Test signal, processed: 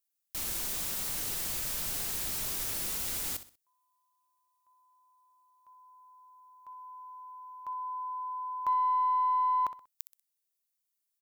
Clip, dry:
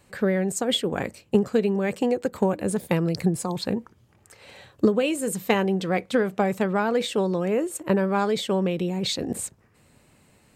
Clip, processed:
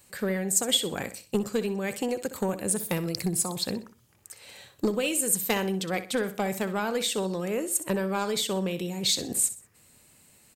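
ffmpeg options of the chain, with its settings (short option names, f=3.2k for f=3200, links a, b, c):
-af "aeval=exprs='0.447*(cos(1*acos(clip(val(0)/0.447,-1,1)))-cos(1*PI/2))+0.0562*(cos(2*acos(clip(val(0)/0.447,-1,1)))-cos(2*PI/2))+0.0251*(cos(5*acos(clip(val(0)/0.447,-1,1)))-cos(5*PI/2))+0.00891*(cos(7*acos(clip(val(0)/0.447,-1,1)))-cos(7*PI/2))+0.00355*(cos(8*acos(clip(val(0)/0.447,-1,1)))-cos(8*PI/2))':c=same,aecho=1:1:63|126|189:0.224|0.0739|0.0244,crystalizer=i=4:c=0,volume=-7.5dB"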